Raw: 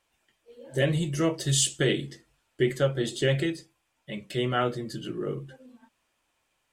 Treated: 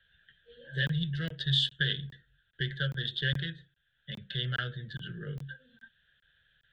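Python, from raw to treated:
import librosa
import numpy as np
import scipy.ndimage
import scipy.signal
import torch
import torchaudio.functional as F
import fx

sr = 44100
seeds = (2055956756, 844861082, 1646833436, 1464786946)

y = fx.wiener(x, sr, points=9)
y = fx.curve_eq(y, sr, hz=(170.0, 290.0, 460.0, 1100.0, 1600.0, 2300.0, 3500.0, 6500.0, 11000.0), db=(0, -26, -12, -30, 12, -15, 13, -22, -27))
y = fx.buffer_crackle(y, sr, first_s=0.87, period_s=0.41, block=1024, kind='zero')
y = fx.band_squash(y, sr, depth_pct=40)
y = F.gain(torch.from_numpy(y), -2.5).numpy()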